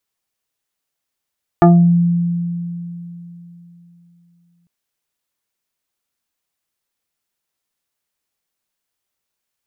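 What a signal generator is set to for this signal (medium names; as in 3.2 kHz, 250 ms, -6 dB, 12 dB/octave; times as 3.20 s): FM tone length 3.05 s, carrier 172 Hz, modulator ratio 3.01, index 1.8, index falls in 0.40 s exponential, decay 3.44 s, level -4 dB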